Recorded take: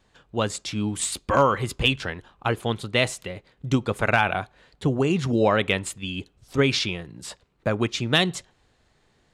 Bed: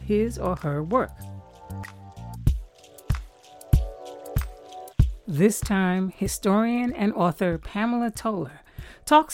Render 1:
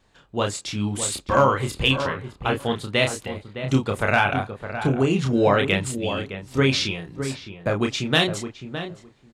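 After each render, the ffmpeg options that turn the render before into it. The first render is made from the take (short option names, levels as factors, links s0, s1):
-filter_complex "[0:a]asplit=2[s0][s1];[s1]adelay=30,volume=0.596[s2];[s0][s2]amix=inputs=2:normalize=0,asplit=2[s3][s4];[s4]adelay=612,lowpass=f=1500:p=1,volume=0.355,asplit=2[s5][s6];[s6]adelay=612,lowpass=f=1500:p=1,volume=0.15[s7];[s5][s7]amix=inputs=2:normalize=0[s8];[s3][s8]amix=inputs=2:normalize=0"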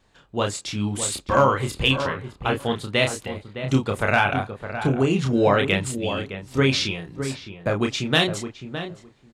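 -af anull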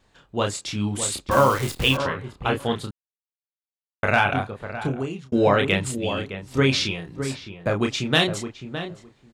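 -filter_complex "[0:a]asettb=1/sr,asplit=3[s0][s1][s2];[s0]atrim=end=1.314[s3];[s1]atrim=start=1.31:end=1.97,asetpts=PTS-STARTPTS,afade=t=in:d=0.004:c=qsin,afade=t=out:st=0.656:d=0.004:c=qsin,acrusher=bits=6:dc=4:mix=0:aa=0.000001[s4];[s2]atrim=start=1.966[s5];[s3][s4]acrossfade=d=0.004:c1=hsin:c2=qsin[s6];[s6][s5]acrossfade=d=0.004:c1=qsin:c2=hsin,asplit=4[s7][s8][s9][s10];[s7]atrim=end=2.91,asetpts=PTS-STARTPTS,afade=t=out:st=2.906:d=0.004:c=hsin[s11];[s8]atrim=start=2.91:end=4.03,asetpts=PTS-STARTPTS,volume=0[s12];[s9]atrim=start=4.03:end=5.32,asetpts=PTS-STARTPTS,afade=t=in:d=0.004:c=hsin,afade=t=out:st=0.57:d=0.72[s13];[s10]atrim=start=5.32,asetpts=PTS-STARTPTS,afade=t=in:d=0.004:c=hsin[s14];[s11][s12][s13][s14]concat=n=4:v=0:a=1"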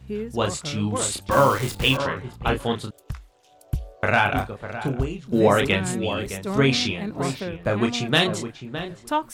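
-filter_complex "[1:a]volume=0.422[s0];[0:a][s0]amix=inputs=2:normalize=0"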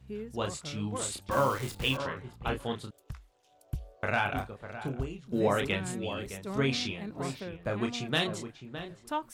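-af "volume=0.335"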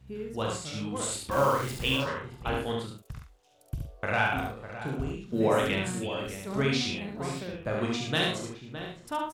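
-filter_complex "[0:a]asplit=2[s0][s1];[s1]adelay=45,volume=0.398[s2];[s0][s2]amix=inputs=2:normalize=0,aecho=1:1:71:0.708"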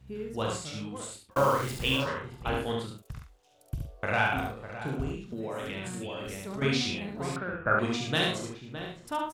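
-filter_complex "[0:a]asettb=1/sr,asplit=3[s0][s1][s2];[s0]atrim=end=5.154[s3];[s1]atrim=start=5.15:end=6.62,asetpts=PTS-STARTPTS,afade=t=in:d=0.004:c=qsin,afade=t=out:st=1.466:d=0.004:c=qsin,acompressor=threshold=0.0224:ratio=5:attack=3.2:release=140:knee=1:detection=peak[s4];[s2]atrim=start=6.616[s5];[s3][s4]acrossfade=d=0.004:c1=hsin:c2=qsin[s6];[s6][s5]acrossfade=d=0.004:c1=qsin:c2=hsin,asettb=1/sr,asplit=3[s7][s8][s9];[s7]atrim=end=7.364[s10];[s8]atrim=start=7.36:end=7.79,asetpts=PTS-STARTPTS,afade=t=in:d=0.004:c=qsin,afade=t=out:st=0.426:d=0.004:c=qsin,lowpass=f=1400:t=q:w=12[s11];[s9]atrim=start=7.786[s12];[s10][s11]acrossfade=d=0.004:c1=hsin:c2=qsin[s13];[s13][s12]acrossfade=d=0.004:c1=qsin:c2=hsin,asplit=2[s14][s15];[s14]atrim=end=1.36,asetpts=PTS-STARTPTS,afade=t=out:st=0.59:d=0.77[s16];[s15]atrim=start=1.36,asetpts=PTS-STARTPTS,afade=t=in:d=0.004:c=hsin[s17];[s16][s17]concat=n=2:v=0:a=1"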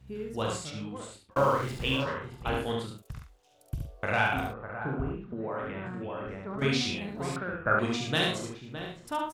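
-filter_complex "[0:a]asettb=1/sr,asplit=3[s0][s1][s2];[s0]atrim=end=0.704[s3];[s1]atrim=start=0.7:end=2.22,asetpts=PTS-STARTPTS,afade=t=in:d=0.004:c=qsin,afade=t=out:st=1.516:d=0.004:c=qsin,lowpass=f=3400:p=1[s4];[s2]atrim=start=2.216[s5];[s3][s4]acrossfade=d=0.004:c1=hsin:c2=qsin[s6];[s6][s5]acrossfade=d=0.004:c1=qsin:c2=hsin,asettb=1/sr,asplit=3[s7][s8][s9];[s7]atrim=end=4.534[s10];[s8]atrim=start=4.53:end=6.59,asetpts=PTS-STARTPTS,afade=t=in:d=0.004:c=qsin,afade=t=out:st=2.056:d=0.004:c=qsin,lowpass=f=1400:t=q:w=1.7[s11];[s9]atrim=start=6.586[s12];[s10][s11]acrossfade=d=0.004:c1=hsin:c2=qsin[s13];[s13][s12]acrossfade=d=0.004:c1=qsin:c2=hsin"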